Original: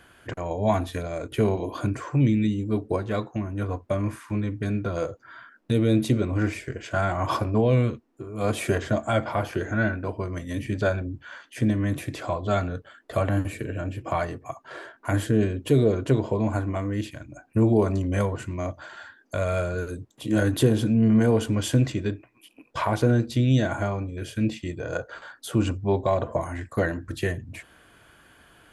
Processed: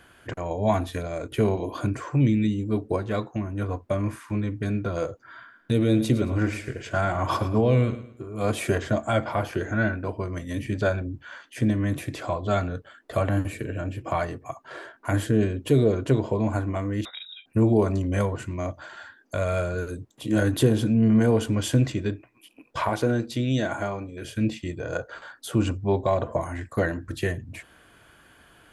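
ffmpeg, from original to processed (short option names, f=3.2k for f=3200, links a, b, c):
-filter_complex "[0:a]asettb=1/sr,asplit=3[a][b][c];[a]atrim=end=5.264[d];[b]atrim=start=5.26:end=8.38,asetpts=PTS-STARTPTS,afade=t=in:d=0.004:c=qsin,afade=t=out:st=3.116:d=0.004:c=qsin,aecho=1:1:110|220|330:0.224|0.0761|0.0259,atrim=end_sample=137592[e];[c]atrim=start=8.376[f];[d][e]acrossfade=d=0.004:c1=hsin:c2=qsin[g];[g][f]acrossfade=d=0.004:c1=qsin:c2=hsin,asettb=1/sr,asplit=3[h][i][j];[h]atrim=end=17.054[k];[i]atrim=start=17.05:end=17.46,asetpts=PTS-STARTPTS,afade=t=in:d=0.004:c=qsin,afade=t=out:st=0.406:d=0.004:c=qsin,lowpass=f=3.3k:t=q:w=0.5098,lowpass=f=3.3k:t=q:w=0.6013,lowpass=f=3.3k:t=q:w=0.9,lowpass=f=3.3k:t=q:w=2.563,afreqshift=-3900[l];[j]atrim=start=17.456[m];[k][l]acrossfade=d=0.004:c1=hsin:c2=qsin[n];[n][m]acrossfade=d=0.004:c1=qsin:c2=hsin,asettb=1/sr,asplit=3[o][p][q];[o]atrim=end=22.894[r];[p]atrim=start=22.89:end=24.25,asetpts=PTS-STARTPTS,afade=t=in:d=0.004:c=qsin,afade=t=out:st=1.356:d=0.004:c=qsin,highpass=f=220:p=1[s];[q]atrim=start=24.246[t];[r][s]acrossfade=d=0.004:c1=hsin:c2=qsin[u];[u][t]acrossfade=d=0.004:c1=qsin:c2=hsin"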